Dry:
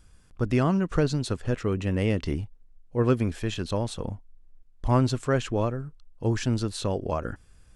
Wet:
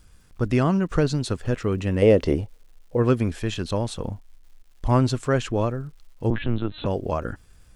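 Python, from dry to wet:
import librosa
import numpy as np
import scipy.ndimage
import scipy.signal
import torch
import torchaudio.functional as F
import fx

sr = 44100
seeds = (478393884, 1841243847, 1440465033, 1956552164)

y = fx.peak_eq(x, sr, hz=520.0, db=14.0, octaves=1.1, at=(2.02, 2.97))
y = fx.dmg_crackle(y, sr, seeds[0], per_s=330.0, level_db=-54.0)
y = fx.lpc_vocoder(y, sr, seeds[1], excitation='pitch_kept', order=10, at=(6.3, 6.86))
y = y * 10.0 ** (2.5 / 20.0)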